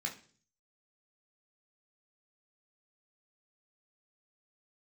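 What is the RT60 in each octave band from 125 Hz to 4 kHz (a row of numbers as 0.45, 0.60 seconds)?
0.70, 0.60, 0.50, 0.40, 0.40, 0.50 seconds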